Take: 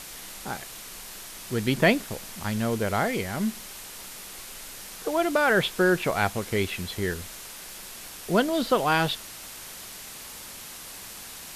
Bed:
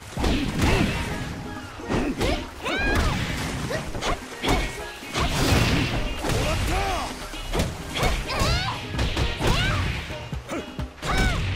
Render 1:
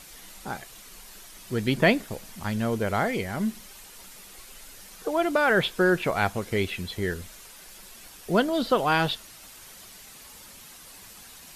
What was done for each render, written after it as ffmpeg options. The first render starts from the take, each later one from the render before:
ffmpeg -i in.wav -af "afftdn=noise_reduction=8:noise_floor=-42" out.wav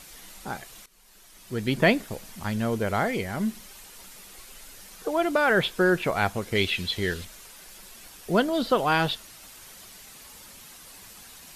ffmpeg -i in.wav -filter_complex "[0:a]asettb=1/sr,asplit=3[link_01][link_02][link_03];[link_01]atrim=end=6.554[link_04];[link_02]atrim=start=6.55:end=7.25,asetpts=PTS-STARTPTS,afade=type=in:duration=0.004:curve=qsin,afade=type=out:start_time=0.696:duration=0.004:curve=qsin,equalizer=frequency=3500:width=1:gain=9.5[link_05];[link_03]atrim=start=7.246[link_06];[link_04][link_05]acrossfade=duration=0.004:curve1=hsin:curve2=qsin[link_07];[link_07][link_06]acrossfade=duration=0.004:curve1=qsin:curve2=hsin,asplit=2[link_08][link_09];[link_08]atrim=end=0.86,asetpts=PTS-STARTPTS,afade=type=out:start_time=0.856:duration=0.004:curve=hsin:silence=0.125893[link_10];[link_09]atrim=start=0.86,asetpts=PTS-STARTPTS,afade=type=in:duration=0.98:silence=0.125893[link_11];[link_10][link_11]concat=n=2:v=0:a=1" out.wav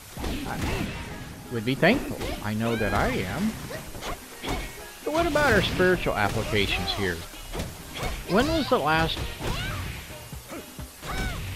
ffmpeg -i in.wav -i bed.wav -filter_complex "[1:a]volume=-8dB[link_01];[0:a][link_01]amix=inputs=2:normalize=0" out.wav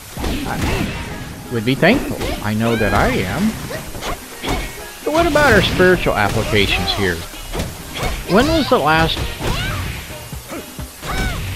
ffmpeg -i in.wav -af "volume=9.5dB,alimiter=limit=-1dB:level=0:latency=1" out.wav

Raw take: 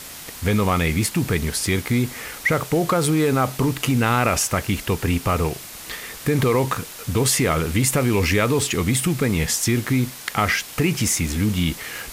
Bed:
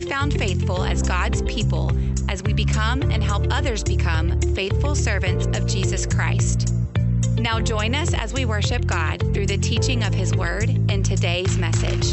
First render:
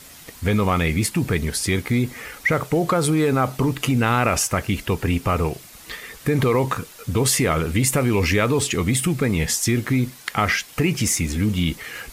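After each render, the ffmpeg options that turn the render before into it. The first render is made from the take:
ffmpeg -i in.wav -af "afftdn=noise_reduction=8:noise_floor=-37" out.wav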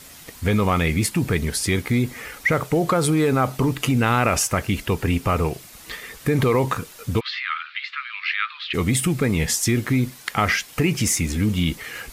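ffmpeg -i in.wav -filter_complex "[0:a]asplit=3[link_01][link_02][link_03];[link_01]afade=type=out:start_time=7.19:duration=0.02[link_04];[link_02]asuperpass=centerf=2300:order=12:qfactor=0.76,afade=type=in:start_time=7.19:duration=0.02,afade=type=out:start_time=8.73:duration=0.02[link_05];[link_03]afade=type=in:start_time=8.73:duration=0.02[link_06];[link_04][link_05][link_06]amix=inputs=3:normalize=0" out.wav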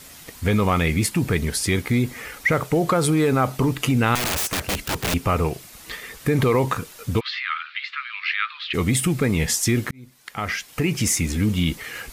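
ffmpeg -i in.wav -filter_complex "[0:a]asettb=1/sr,asplit=3[link_01][link_02][link_03];[link_01]atrim=end=4.154[link_04];[link_02]atrim=start=4.15:end=5.14,asetpts=PTS-STARTPTS,afade=type=in:duration=0.004:curve=qsin,afade=type=out:start_time=0.986:duration=0.004:curve=qsin,aeval=exprs='(mod(8.41*val(0)+1,2)-1)/8.41':channel_layout=same[link_05];[link_03]atrim=start=5.136[link_06];[link_04][link_05]acrossfade=duration=0.004:curve1=hsin:curve2=qsin[link_07];[link_07][link_06]acrossfade=duration=0.004:curve1=qsin:curve2=hsin,asplit=2[link_08][link_09];[link_08]atrim=end=9.91,asetpts=PTS-STARTPTS,afade=type=out:start_time=9.906:duration=0.004:curve=hsin[link_10];[link_09]atrim=start=9.91,asetpts=PTS-STARTPTS,afade=type=in:duration=1.19[link_11];[link_10][link_11]concat=n=2:v=0:a=1" out.wav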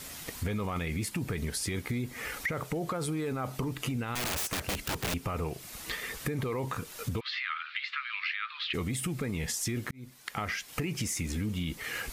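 ffmpeg -i in.wav -af "alimiter=limit=-14dB:level=0:latency=1:release=15,acompressor=threshold=-32dB:ratio=4" out.wav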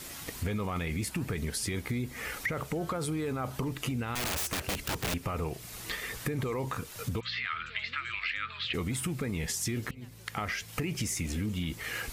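ffmpeg -i in.wav -i bed.wav -filter_complex "[1:a]volume=-32dB[link_01];[0:a][link_01]amix=inputs=2:normalize=0" out.wav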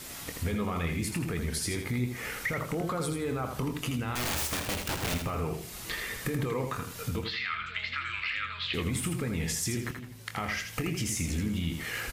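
ffmpeg -i in.wav -filter_complex "[0:a]asplit=2[link_01][link_02];[link_02]adelay=24,volume=-10.5dB[link_03];[link_01][link_03]amix=inputs=2:normalize=0,asplit=2[link_04][link_05];[link_05]aecho=0:1:81|162|243:0.501|0.135|0.0365[link_06];[link_04][link_06]amix=inputs=2:normalize=0" out.wav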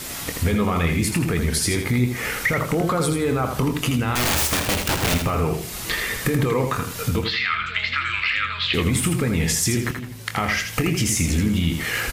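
ffmpeg -i in.wav -af "volume=10.5dB" out.wav

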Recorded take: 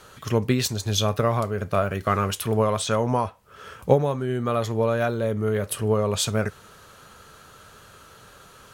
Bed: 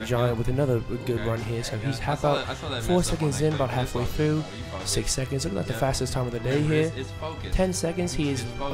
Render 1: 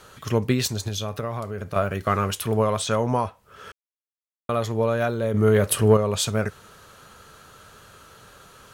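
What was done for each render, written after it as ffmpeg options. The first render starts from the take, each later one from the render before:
ffmpeg -i in.wav -filter_complex "[0:a]asettb=1/sr,asplit=3[link_01][link_02][link_03];[link_01]atrim=end=0.884[link_04];[link_02]atrim=start=0.88:end=1.76,asetpts=PTS-STARTPTS,afade=type=in:duration=0.004:curve=qsin,afade=type=out:start_time=0.876:duration=0.004:curve=qsin,acompressor=threshold=-30dB:ratio=2:attack=3.2:release=140:knee=1:detection=peak[link_05];[link_03]atrim=start=1.756[link_06];[link_04][link_05]acrossfade=duration=0.004:curve1=hsin:curve2=qsin[link_07];[link_07][link_06]acrossfade=duration=0.004:curve1=qsin:curve2=hsin,asettb=1/sr,asplit=3[link_08][link_09][link_10];[link_08]atrim=end=5.344[link_11];[link_09]atrim=start=5.34:end=5.97,asetpts=PTS-STARTPTS,afade=type=in:duration=0.004:curve=qsin,afade=type=out:start_time=0.626:duration=0.004:curve=qsin,acontrast=67[link_12];[link_10]atrim=start=5.966[link_13];[link_11][link_12]acrossfade=duration=0.004:curve1=hsin:curve2=qsin[link_14];[link_14][link_13]acrossfade=duration=0.004:curve1=qsin:curve2=hsin,asplit=3[link_15][link_16][link_17];[link_15]atrim=end=3.72,asetpts=PTS-STARTPTS,afade=type=out:start_time=3.716:duration=0.004:curve=hsin[link_18];[link_16]atrim=start=3.72:end=4.49,asetpts=PTS-STARTPTS,volume=0[link_19];[link_17]atrim=start=4.49,asetpts=PTS-STARTPTS,afade=type=in:duration=0.004:curve=hsin[link_20];[link_18][link_19][link_20]concat=n=3:v=0:a=1" out.wav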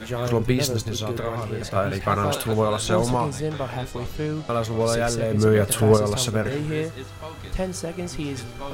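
ffmpeg -i in.wav -i bed.wav -filter_complex "[1:a]volume=-3.5dB[link_01];[0:a][link_01]amix=inputs=2:normalize=0" out.wav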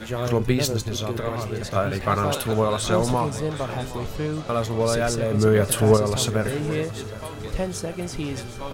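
ffmpeg -i in.wav -af "aecho=1:1:767|1534|2301|3068|3835:0.15|0.0823|0.0453|0.0249|0.0137" out.wav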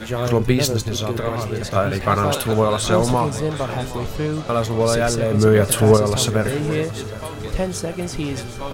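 ffmpeg -i in.wav -af "volume=4dB,alimiter=limit=-2dB:level=0:latency=1" out.wav

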